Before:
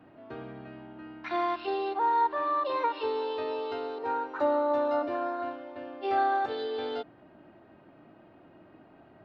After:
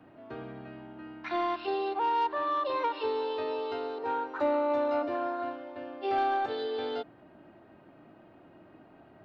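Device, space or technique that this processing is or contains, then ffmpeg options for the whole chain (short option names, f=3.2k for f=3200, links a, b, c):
one-band saturation: -filter_complex "[0:a]acrossover=split=500|2300[a][b][c];[b]asoftclip=type=tanh:threshold=-25dB[d];[a][d][c]amix=inputs=3:normalize=0"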